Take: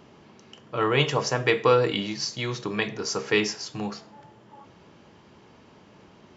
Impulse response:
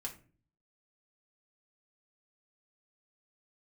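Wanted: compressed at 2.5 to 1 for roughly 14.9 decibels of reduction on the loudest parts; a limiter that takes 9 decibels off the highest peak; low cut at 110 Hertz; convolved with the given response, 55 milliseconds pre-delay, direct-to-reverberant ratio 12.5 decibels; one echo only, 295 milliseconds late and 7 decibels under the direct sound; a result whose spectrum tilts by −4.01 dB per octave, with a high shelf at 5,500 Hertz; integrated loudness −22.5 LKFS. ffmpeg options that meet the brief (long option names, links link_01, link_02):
-filter_complex "[0:a]highpass=110,highshelf=frequency=5500:gain=-6,acompressor=threshold=-39dB:ratio=2.5,alimiter=level_in=4.5dB:limit=-24dB:level=0:latency=1,volume=-4.5dB,aecho=1:1:295:0.447,asplit=2[link_01][link_02];[1:a]atrim=start_sample=2205,adelay=55[link_03];[link_02][link_03]afir=irnorm=-1:irlink=0,volume=-11dB[link_04];[link_01][link_04]amix=inputs=2:normalize=0,volume=17.5dB"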